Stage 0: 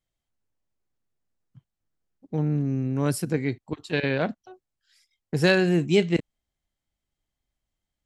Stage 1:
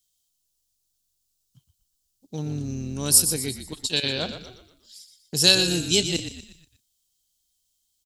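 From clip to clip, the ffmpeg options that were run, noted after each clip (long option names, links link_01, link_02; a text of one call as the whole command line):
ffmpeg -i in.wav -filter_complex "[0:a]asplit=6[link_01][link_02][link_03][link_04][link_05][link_06];[link_02]adelay=120,afreqshift=-47,volume=-9.5dB[link_07];[link_03]adelay=240,afreqshift=-94,volume=-16.6dB[link_08];[link_04]adelay=360,afreqshift=-141,volume=-23.8dB[link_09];[link_05]adelay=480,afreqshift=-188,volume=-30.9dB[link_10];[link_06]adelay=600,afreqshift=-235,volume=-38dB[link_11];[link_01][link_07][link_08][link_09][link_10][link_11]amix=inputs=6:normalize=0,aexciter=amount=13.6:drive=3.9:freq=3100,volume=-5.5dB" out.wav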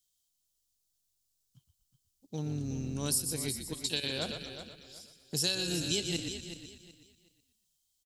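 ffmpeg -i in.wav -filter_complex "[0:a]acompressor=threshold=-24dB:ratio=4,asplit=2[link_01][link_02];[link_02]aecho=0:1:373|746|1119:0.299|0.0776|0.0202[link_03];[link_01][link_03]amix=inputs=2:normalize=0,volume=-5dB" out.wav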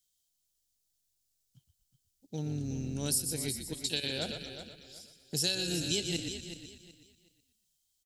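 ffmpeg -i in.wav -af "equalizer=frequency=1100:width=4.7:gain=-11.5" out.wav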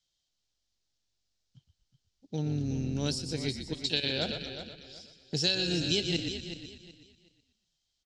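ffmpeg -i in.wav -af "lowpass=frequency=5500:width=0.5412,lowpass=frequency=5500:width=1.3066,volume=4dB" out.wav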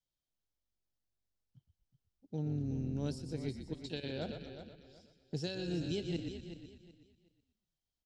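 ffmpeg -i in.wav -af "equalizer=frequency=4700:width=0.38:gain=-13.5,volume=-4.5dB" out.wav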